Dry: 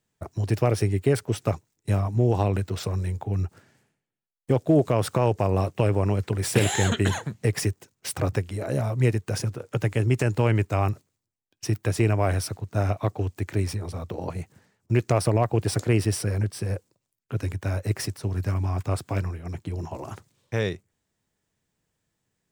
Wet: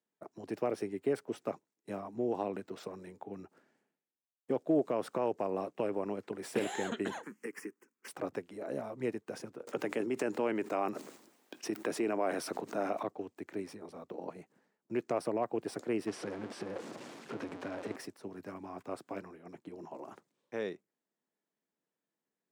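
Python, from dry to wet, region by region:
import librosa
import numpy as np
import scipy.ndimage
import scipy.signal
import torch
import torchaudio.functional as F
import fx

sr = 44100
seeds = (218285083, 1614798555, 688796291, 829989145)

y = fx.chain(x, sr, fx.highpass(hz=220.0, slope=24),
    fx.fixed_phaser(hz=1600.0, stages=4),
    fx.band_squash(depth_pct=70), at=(7.23, 8.08))
y = fx.chain(y, sr, fx.highpass(hz=190.0, slope=12),
    fx.env_flatten(amount_pct=70), at=(9.67, 13.03))
y = fx.chain(y, sr, fx.zero_step(step_db=-24.5),
    fx.air_absorb(metres=72.0), at=(16.07, 17.96))
y = scipy.signal.sosfilt(scipy.signal.butter(4, 220.0, 'highpass', fs=sr, output='sos'), y)
y = fx.high_shelf(y, sr, hz=2300.0, db=-11.0)
y = y * 10.0 ** (-8.0 / 20.0)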